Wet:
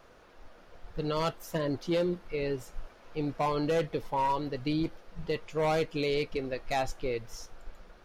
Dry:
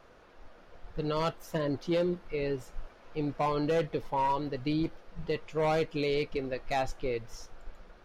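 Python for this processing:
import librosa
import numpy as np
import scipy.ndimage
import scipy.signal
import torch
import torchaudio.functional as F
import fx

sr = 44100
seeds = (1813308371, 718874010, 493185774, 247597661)

y = fx.high_shelf(x, sr, hz=6000.0, db=6.5)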